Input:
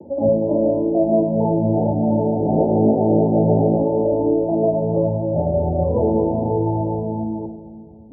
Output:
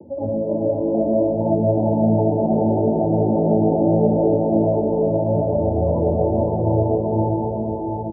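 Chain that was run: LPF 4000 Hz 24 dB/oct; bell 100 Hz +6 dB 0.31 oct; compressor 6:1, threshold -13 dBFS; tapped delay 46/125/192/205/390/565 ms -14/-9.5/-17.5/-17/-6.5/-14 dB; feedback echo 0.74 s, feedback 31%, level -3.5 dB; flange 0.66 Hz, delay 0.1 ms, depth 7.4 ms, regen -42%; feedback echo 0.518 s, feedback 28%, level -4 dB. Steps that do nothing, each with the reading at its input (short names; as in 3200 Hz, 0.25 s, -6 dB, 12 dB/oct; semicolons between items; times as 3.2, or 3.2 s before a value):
LPF 4000 Hz: input band ends at 910 Hz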